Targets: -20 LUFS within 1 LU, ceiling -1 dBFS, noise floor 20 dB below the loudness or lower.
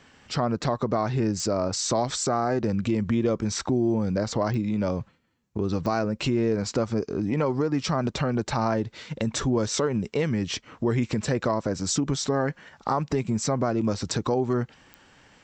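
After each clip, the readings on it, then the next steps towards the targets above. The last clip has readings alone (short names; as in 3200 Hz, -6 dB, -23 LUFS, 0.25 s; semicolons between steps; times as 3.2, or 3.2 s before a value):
clicks 4; loudness -26.5 LUFS; peak -12.0 dBFS; loudness target -20.0 LUFS
-> de-click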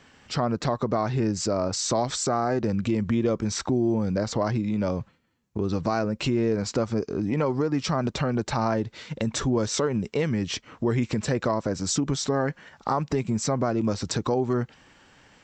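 clicks 0; loudness -26.5 LUFS; peak -12.0 dBFS; loudness target -20.0 LUFS
-> gain +6.5 dB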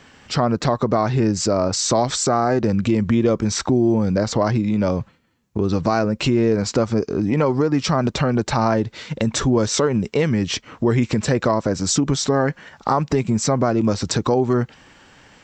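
loudness -20.0 LUFS; peak -5.5 dBFS; noise floor -51 dBFS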